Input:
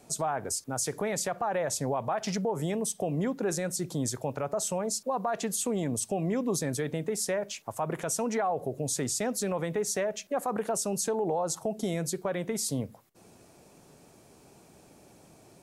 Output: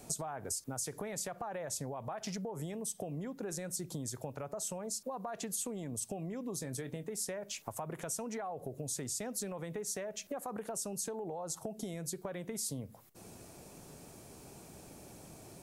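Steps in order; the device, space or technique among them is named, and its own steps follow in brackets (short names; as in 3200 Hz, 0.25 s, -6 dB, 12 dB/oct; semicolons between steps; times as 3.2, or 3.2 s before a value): ASMR close-microphone chain (low shelf 110 Hz +7 dB; compressor 10:1, threshold -39 dBFS, peak gain reduction 15 dB; high shelf 8000 Hz +7.5 dB); 6.54–7.04 doubler 23 ms -12.5 dB; gain +1.5 dB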